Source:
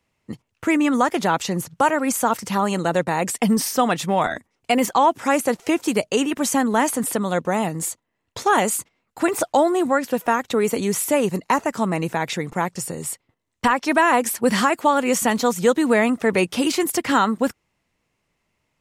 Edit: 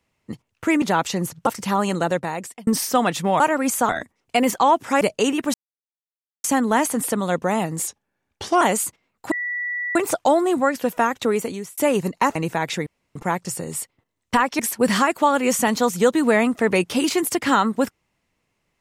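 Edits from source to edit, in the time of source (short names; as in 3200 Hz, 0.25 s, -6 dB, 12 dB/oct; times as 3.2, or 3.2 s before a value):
0.82–1.17 cut
1.82–2.31 move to 4.24
2.85–3.51 fade out linear
5.36–5.94 cut
6.47 insert silence 0.90 s
7.9–8.54 speed 86%
9.24 add tone 1950 Hz -23.5 dBFS 0.64 s
10.55–11.06 fade out linear
11.64–11.95 cut
12.46 insert room tone 0.29 s
13.9–14.22 cut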